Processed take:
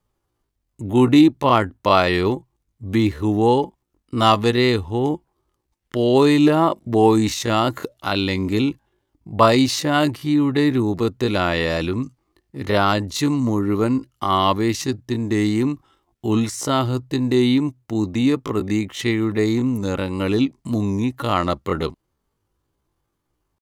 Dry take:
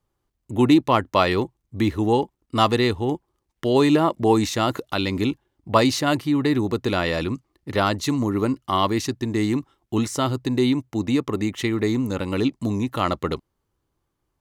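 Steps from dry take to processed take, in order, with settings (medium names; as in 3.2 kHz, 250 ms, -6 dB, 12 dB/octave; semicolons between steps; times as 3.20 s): tempo 0.61×; wow and flutter 25 cents; trim +2.5 dB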